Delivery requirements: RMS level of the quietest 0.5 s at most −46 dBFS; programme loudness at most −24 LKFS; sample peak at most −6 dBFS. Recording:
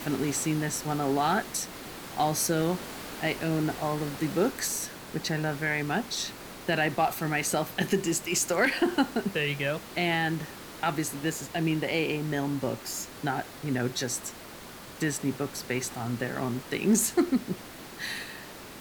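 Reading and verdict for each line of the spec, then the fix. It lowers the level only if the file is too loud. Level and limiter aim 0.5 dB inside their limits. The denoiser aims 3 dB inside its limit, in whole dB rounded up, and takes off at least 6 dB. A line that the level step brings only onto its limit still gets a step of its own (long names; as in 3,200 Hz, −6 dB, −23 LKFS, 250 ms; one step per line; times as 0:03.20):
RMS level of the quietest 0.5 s −45 dBFS: out of spec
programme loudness −29.0 LKFS: in spec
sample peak −13.0 dBFS: in spec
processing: broadband denoise 6 dB, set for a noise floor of −45 dBFS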